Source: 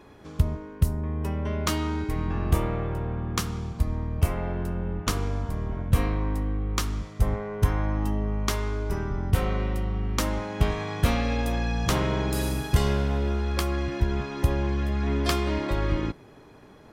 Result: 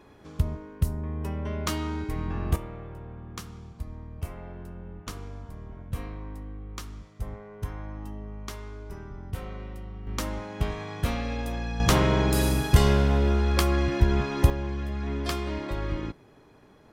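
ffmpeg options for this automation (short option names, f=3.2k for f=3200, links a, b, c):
-af "asetnsamples=n=441:p=0,asendcmd='2.56 volume volume -11.5dB;10.07 volume volume -5dB;11.8 volume volume 3.5dB;14.5 volume volume -5dB',volume=-3dB"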